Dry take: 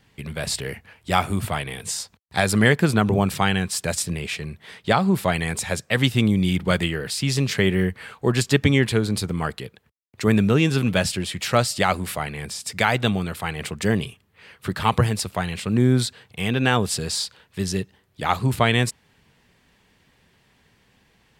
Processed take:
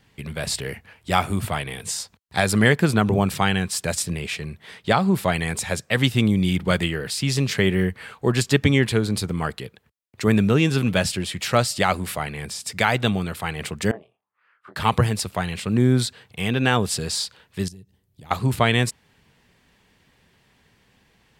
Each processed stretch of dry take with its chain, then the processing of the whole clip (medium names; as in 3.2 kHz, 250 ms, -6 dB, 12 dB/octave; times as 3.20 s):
13.91–14.76 s: auto-wah 670–1500 Hz, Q 4.7, down, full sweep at -26 dBFS + doubling 25 ms -2 dB + upward expansion, over -47 dBFS
17.68–18.31 s: FFT filter 120 Hz 0 dB, 1.4 kHz -18 dB, 13 kHz -2 dB + compression 5:1, threshold -41 dBFS
whole clip: none